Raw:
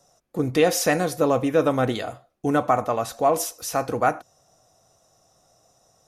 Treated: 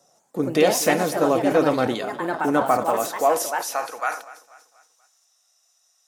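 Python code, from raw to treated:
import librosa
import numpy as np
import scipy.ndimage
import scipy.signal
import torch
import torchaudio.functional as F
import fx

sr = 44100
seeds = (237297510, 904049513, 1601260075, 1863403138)

p1 = fx.echo_pitch(x, sr, ms=142, semitones=3, count=2, db_per_echo=-6.0)
p2 = fx.filter_sweep_highpass(p1, sr, from_hz=190.0, to_hz=2000.0, start_s=2.81, end_s=4.41, q=0.86)
p3 = p2 + fx.echo_feedback(p2, sr, ms=242, feedback_pct=44, wet_db=-18, dry=0)
y = fx.sustainer(p3, sr, db_per_s=140.0)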